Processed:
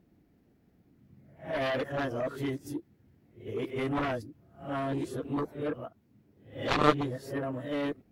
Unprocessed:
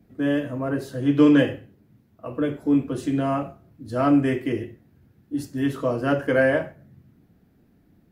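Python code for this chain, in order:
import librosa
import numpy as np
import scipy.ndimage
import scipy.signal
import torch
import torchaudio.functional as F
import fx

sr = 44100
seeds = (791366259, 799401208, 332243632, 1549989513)

y = np.flip(x).copy()
y = fx.formant_shift(y, sr, semitones=2)
y = fx.cheby_harmonics(y, sr, harmonics=(3, 7), levels_db=(-6, -32), full_scale_db=-5.5)
y = F.gain(torch.from_numpy(y), -3.0).numpy()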